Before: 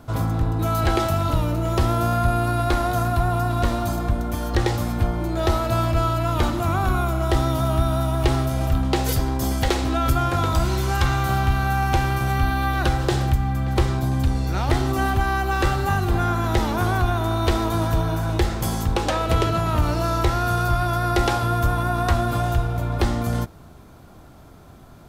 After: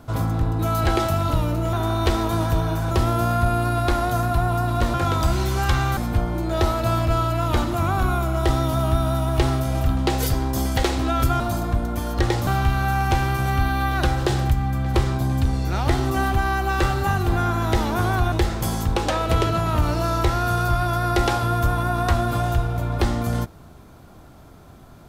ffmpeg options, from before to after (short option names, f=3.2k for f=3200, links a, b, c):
-filter_complex "[0:a]asplit=8[a][b][c][d][e][f][g][h];[a]atrim=end=1.732[i];[b]atrim=start=17.138:end=18.322[j];[c]atrim=start=1.728:end=3.762[k];[d]atrim=start=10.258:end=11.292[l];[e]atrim=start=4.828:end=10.262[m];[f]atrim=start=3.758:end=4.832[n];[g]atrim=start=11.288:end=17.142[o];[h]atrim=start=18.318[p];[i][j]acrossfade=d=0.004:c1=hsin:c2=hsin[q];[q][k]acrossfade=d=0.004:c1=hsin:c2=hsin[r];[r][l]acrossfade=d=0.004:c1=hsin:c2=hsin[s];[s][m]acrossfade=d=0.004:c1=hsin:c2=hsin[t];[t][n]acrossfade=d=0.004:c1=hsin:c2=hsin[u];[u][o]acrossfade=d=0.004:c1=hsin:c2=hsin[v];[v][p]acrossfade=d=0.004:c1=hsin:c2=hsin"